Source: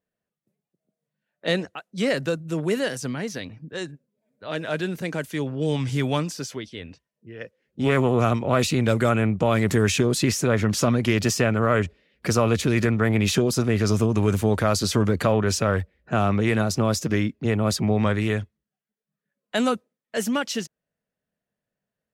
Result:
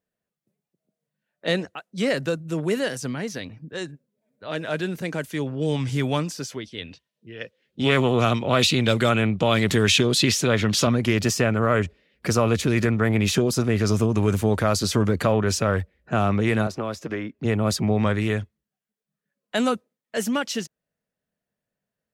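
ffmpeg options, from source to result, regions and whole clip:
-filter_complex "[0:a]asettb=1/sr,asplit=3[a][b][c];[a]atrim=end=6.784[d];[b]atrim=start=6.78:end=10.87,asetpts=PTS-STARTPTS,afade=t=in:d=0.004:c=qsin,afade=t=out:st=4.086:d=0.004:c=qsin,highpass=74,equalizer=f=3.5k:t=o:w=1:g=11[e];[c]atrim=start=10.866[f];[d][e]acrossfade=d=0.004:c1=hsin:c2=qsin[g];[g][f]acrossfade=d=0.004:c1=qsin:c2=hsin,asettb=1/sr,asplit=3[h][i][j];[h]atrim=end=16.674[k];[i]atrim=start=16.67:end=17.39,asetpts=PTS-STARTPTS,afade=t=in:d=0.004:c=qsin,afade=t=out:st=0.716:d=0.004:c=qsin,bass=f=250:g=-9,treble=f=4k:g=-11,acrossover=split=340|1700[l][m][n];[l]acompressor=threshold=-31dB:ratio=4[o];[m]acompressor=threshold=-28dB:ratio=4[p];[n]acompressor=threshold=-39dB:ratio=4[q];[o][p][q]amix=inputs=3:normalize=0[r];[j]atrim=start=17.386[s];[k][r]acrossfade=d=0.004:c1=hsin:c2=qsin[t];[t][s]acrossfade=d=0.004:c1=qsin:c2=hsin"

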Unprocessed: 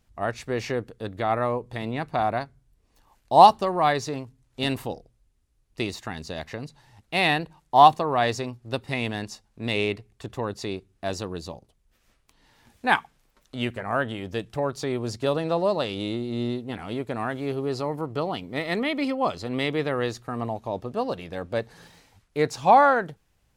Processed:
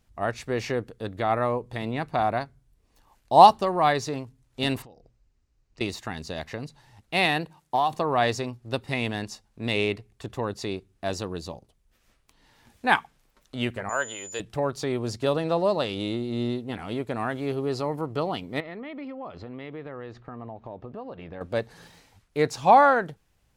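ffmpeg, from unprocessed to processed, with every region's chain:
-filter_complex "[0:a]asettb=1/sr,asplit=3[a][b][c];[a]atrim=end=4.824[d];[b]atrim=start=4.82:end=5.81,asetpts=PTS-STARTPTS,afade=t=in:d=0.004:c=qsin,afade=t=out:st=0.986:d=0.004:c=qsin,lowpass=f=7.1k:w=0.5412,lowpass=f=7.1k:w=1.3066,equalizer=f=3.4k:w=5.4:g=-5.5,acompressor=threshold=-47dB:ratio=6:attack=3.2:release=140:knee=1:detection=peak[e];[c]atrim=start=5.806[f];[d][e]acrossfade=d=0.004:c1=hsin:c2=qsin[g];[g][f]acrossfade=d=0.004:c1=qsin:c2=hsin,asettb=1/sr,asplit=3[h][i][j];[h]atrim=end=7.254[k];[i]atrim=start=7.25:end=7.95,asetpts=PTS-STARTPTS,afade=t=in:d=0.004:c=qsin,afade=t=out:st=0.696:d=0.004:c=qsin,highpass=92,highshelf=f=8.9k:g=5,acompressor=threshold=-18dB:ratio=10:attack=3.2:release=140:knee=1:detection=peak[l];[j]atrim=start=7.946[m];[k][l]acrossfade=d=0.004:c1=hsin:c2=qsin[n];[n][m]acrossfade=d=0.004:c1=qsin:c2=hsin,asettb=1/sr,asplit=3[o][p][q];[o]atrim=end=13.894[r];[p]atrim=start=13.89:end=14.4,asetpts=PTS-STARTPTS,afade=t=in:d=0.004:c=qsin,afade=t=out:st=0.506:d=0.004:c=qsin,highpass=f=810:p=1,aeval=exprs='val(0)+0.00891*sin(2*PI*7000*n/s)':c=same,aecho=1:1:2:0.32,atrim=end_sample=22491[s];[q]atrim=start=14.396[t];[r][s]acrossfade=d=0.004:c1=hsin:c2=qsin[u];[u][t]acrossfade=d=0.004:c1=qsin:c2=hsin,asettb=1/sr,asplit=3[v][w][x];[v]atrim=end=18.604[y];[w]atrim=start=18.6:end=21.41,asetpts=PTS-STARTPTS,afade=t=in:d=0.004:c=qsin,afade=t=out:st=2.806:d=0.004:c=qsin,lowpass=2.2k,acompressor=threshold=-36dB:ratio=4:attack=3.2:release=140:knee=1:detection=peak[z];[x]atrim=start=21.406[aa];[y][z]acrossfade=d=0.004:c1=hsin:c2=qsin[ab];[ab][aa]acrossfade=d=0.004:c1=qsin:c2=hsin"

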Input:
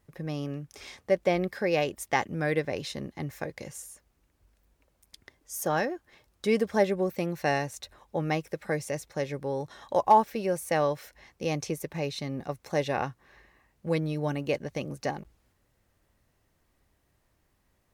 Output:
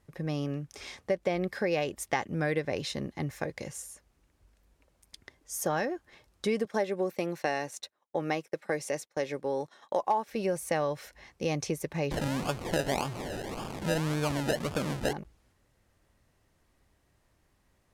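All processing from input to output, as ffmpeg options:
-filter_complex "[0:a]asettb=1/sr,asplit=3[a][b][c];[a]atrim=end=6.654[d];[b]atrim=start=6.65:end=10.28,asetpts=PTS-STARTPTS,afade=t=in:d=0.004:c=qsin,afade=t=out:st=3.626:d=0.004:c=qsin,highpass=240,agate=range=-33dB:threshold=-43dB:ratio=3:release=100:detection=peak[e];[c]atrim=start=10.276[f];[d][e]acrossfade=d=0.004:c1=hsin:c2=qsin[g];[g][f]acrossfade=d=0.004:c1=qsin:c2=hsin,asettb=1/sr,asplit=3[h][i][j];[h]atrim=end=12.114[k];[i]atrim=start=12.11:end=15.13,asetpts=PTS-STARTPTS,afade=t=in:d=0.004:c=qsin,afade=t=out:st=3.016:d=0.004:c=qsin,aeval=exprs='val(0)+0.5*0.0237*sgn(val(0))':c=same,highpass=110,acrusher=samples=31:mix=1:aa=0.000001:lfo=1:lforange=18.6:lforate=1.8[l];[j]atrim=start=15.126[m];[k][l]acrossfade=d=0.004:c1=hsin:c2=qsin[n];[n][m]acrossfade=d=0.004:c1=qsin:c2=hsin,acompressor=threshold=-27dB:ratio=4,lowpass=12k,volume=1.5dB"

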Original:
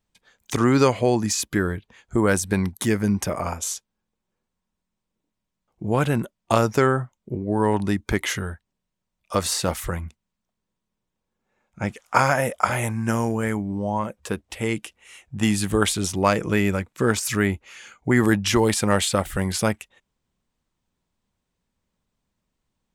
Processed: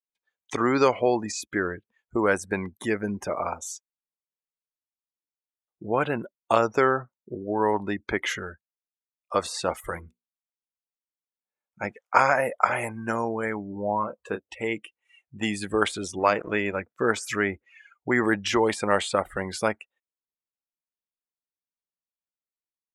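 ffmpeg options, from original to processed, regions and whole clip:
-filter_complex "[0:a]asettb=1/sr,asplit=3[a][b][c];[a]atrim=end=9.804[d];[b]atrim=start=9.8:end=11.87,asetpts=PTS-STARTPTS,afade=t=in:d=0.004:c=qsin,afade=t=out:st=2.066:d=0.004:c=qsin,aemphasis=mode=production:type=50kf,bandreject=f=60:t=h:w=6,bandreject=f=120:t=h:w=6,bandreject=f=180:t=h:w=6,bandreject=f=240:t=h:w=6,bandreject=f=300:t=h:w=6,bandreject=f=360:t=h:w=6,bandreject=f=420:t=h:w=6,bandreject=f=480:t=h:w=6[e];[c]atrim=start=11.866[f];[d][e]acrossfade=d=0.004:c1=hsin:c2=qsin[g];[g][f]acrossfade=d=0.004:c1=qsin:c2=hsin,asettb=1/sr,asplit=3[h][i][j];[h]atrim=end=13.724[k];[i]atrim=start=13.72:end=14.4,asetpts=PTS-STARTPTS,afade=t=in:d=0.004:c=qsin,afade=t=out:st=0.676:d=0.004:c=qsin,equalizer=f=7.1k:t=o:w=1:g=-3.5,asplit=2[l][m];[m]adelay=29,volume=-7dB[n];[l][n]amix=inputs=2:normalize=0,atrim=end_sample=29988[o];[j]atrim=start=14.396[p];[k][o]acrossfade=d=0.004:c1=hsin:c2=qsin[q];[q][p]acrossfade=d=0.004:c1=qsin:c2=hsin,asettb=1/sr,asplit=3[r][s][t];[r]atrim=end=16.194[u];[s]atrim=start=16.19:end=16.76,asetpts=PTS-STARTPTS,afade=t=in:d=0.004:c=qsin,afade=t=out:st=0.566:d=0.004:c=qsin,bandreject=f=65.07:t=h:w=4,bandreject=f=130.14:t=h:w=4,bandreject=f=195.21:t=h:w=4,bandreject=f=260.28:t=h:w=4,aeval=exprs='sgn(val(0))*max(abs(val(0))-0.0158,0)':c=same[v];[t]atrim=start=16.756[w];[u][v]acrossfade=d=0.004:c1=hsin:c2=qsin[x];[x][w]acrossfade=d=0.004:c1=qsin:c2=hsin,deesser=0.45,afftdn=nr=25:nf=-36,bass=f=250:g=-14,treble=f=4k:g=-5"

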